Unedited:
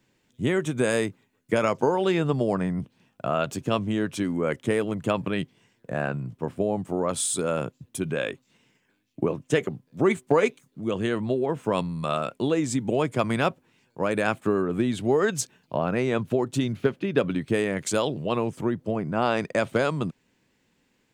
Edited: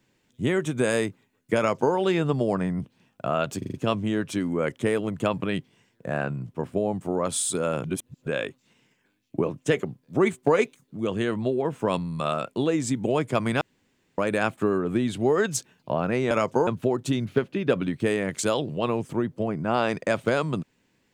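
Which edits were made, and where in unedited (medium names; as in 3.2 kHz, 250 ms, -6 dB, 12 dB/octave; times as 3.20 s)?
1.58–1.94 s: copy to 16.15 s
3.58 s: stutter 0.04 s, 5 plays
7.68–8.11 s: reverse
13.45–14.02 s: room tone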